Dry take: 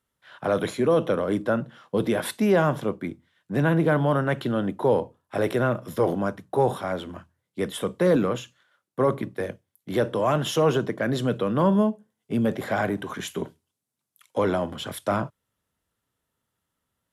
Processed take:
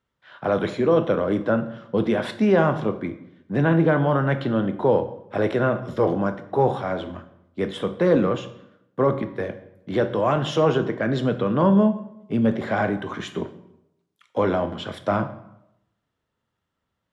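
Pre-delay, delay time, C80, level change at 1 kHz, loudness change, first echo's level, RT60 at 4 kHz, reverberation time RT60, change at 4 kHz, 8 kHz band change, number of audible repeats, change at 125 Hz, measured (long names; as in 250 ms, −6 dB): 7 ms, no echo audible, 15.5 dB, +2.0 dB, +2.5 dB, no echo audible, 0.60 s, 0.85 s, −0.5 dB, can't be measured, no echo audible, +2.5 dB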